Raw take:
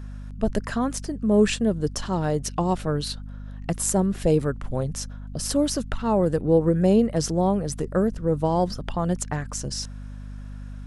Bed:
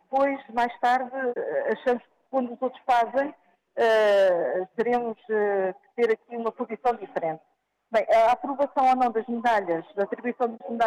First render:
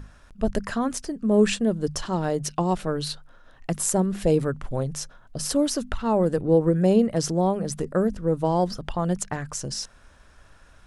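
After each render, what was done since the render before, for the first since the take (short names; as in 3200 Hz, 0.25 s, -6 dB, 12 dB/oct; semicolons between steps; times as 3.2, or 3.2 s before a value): notches 50/100/150/200/250 Hz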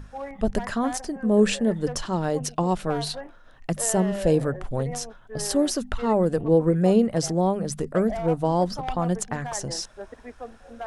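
add bed -13 dB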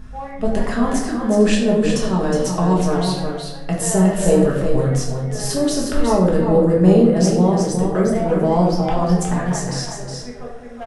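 echo 0.365 s -6 dB; shoebox room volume 210 m³, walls mixed, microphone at 1.4 m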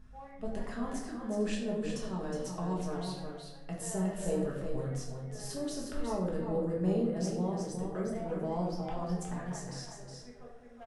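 gain -18 dB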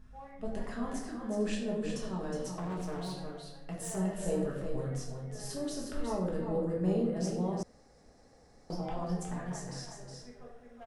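2.54–3.97 overloaded stage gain 33.5 dB; 7.63–8.7 room tone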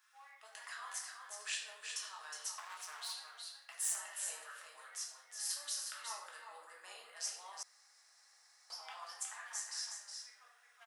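HPF 1100 Hz 24 dB/oct; tilt +2 dB/oct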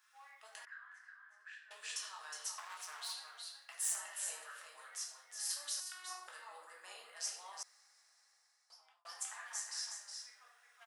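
0.65–1.71 band-pass 1600 Hz, Q 7.5; 5.8–6.28 robotiser 366 Hz; 7.64–9.05 fade out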